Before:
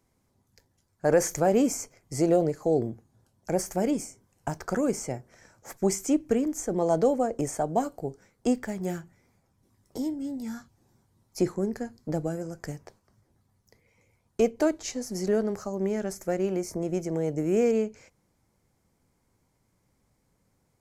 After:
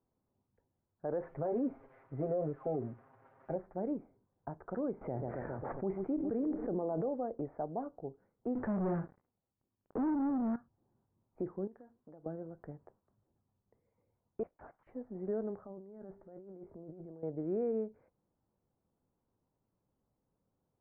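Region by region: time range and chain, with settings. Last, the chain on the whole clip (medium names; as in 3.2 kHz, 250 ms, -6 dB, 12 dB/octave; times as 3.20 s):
1.22–3.56 s: zero-crossing glitches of -24 dBFS + comb 7.5 ms, depth 89%
5.01–7.09 s: filtered feedback delay 136 ms, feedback 78%, low-pass 1.9 kHz, level -20 dB + level flattener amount 70%
8.55–10.56 s: flutter echo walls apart 10 m, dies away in 0.21 s + waveshaping leveller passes 5
11.67–12.26 s: bass shelf 280 Hz -10.5 dB + compression, threshold -41 dBFS
14.43–14.87 s: high-pass 960 Hz 24 dB/octave + compression 4:1, threshold -37 dBFS + LPC vocoder at 8 kHz whisper
15.61–17.23 s: feedback comb 57 Hz, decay 1.8 s, harmonics odd, mix 40% + compressor with a negative ratio -39 dBFS + distance through air 440 m
whole clip: Bessel low-pass 910 Hz, order 6; bass shelf 180 Hz -7 dB; peak limiter -19.5 dBFS; trim -7.5 dB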